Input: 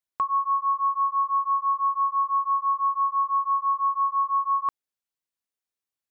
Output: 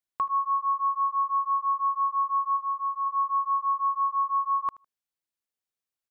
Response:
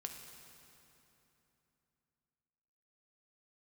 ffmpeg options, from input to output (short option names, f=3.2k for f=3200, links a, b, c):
-filter_complex "[0:a]asplit=3[a][b][c];[a]afade=t=out:st=2.56:d=0.02[d];[b]highpass=f=1.2k:p=1,afade=t=in:st=2.56:d=0.02,afade=t=out:st=3.05:d=0.02[e];[c]afade=t=in:st=3.05:d=0.02[f];[d][e][f]amix=inputs=3:normalize=0,aecho=1:1:78|156:0.0794|0.0143,volume=-2dB"